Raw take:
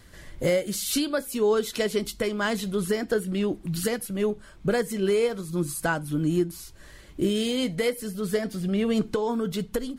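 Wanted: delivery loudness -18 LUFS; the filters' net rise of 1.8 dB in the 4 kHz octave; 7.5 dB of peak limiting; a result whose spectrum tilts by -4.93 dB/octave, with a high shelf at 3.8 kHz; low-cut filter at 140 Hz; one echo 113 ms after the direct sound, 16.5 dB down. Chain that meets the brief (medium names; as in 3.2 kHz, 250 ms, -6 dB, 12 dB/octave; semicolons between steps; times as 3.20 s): high-pass 140 Hz; treble shelf 3.8 kHz -7.5 dB; peaking EQ 4 kHz +7 dB; peak limiter -20 dBFS; delay 113 ms -16.5 dB; trim +11.5 dB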